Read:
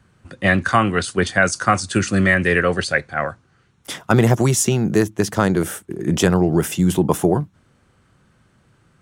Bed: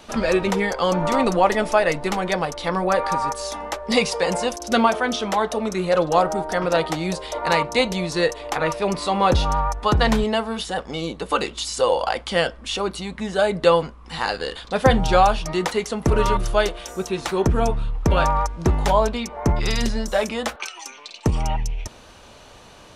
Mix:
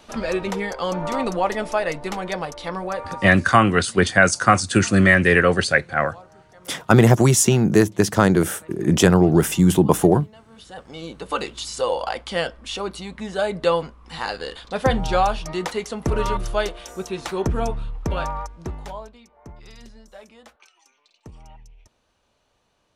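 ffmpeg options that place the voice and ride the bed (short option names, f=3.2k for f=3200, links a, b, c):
-filter_complex "[0:a]adelay=2800,volume=1.5dB[a];[1:a]volume=19dB,afade=t=out:st=2.6:d=0.98:silence=0.0749894,afade=t=in:st=10.47:d=0.89:silence=0.0668344,afade=t=out:st=17.62:d=1.5:silence=0.112202[b];[a][b]amix=inputs=2:normalize=0"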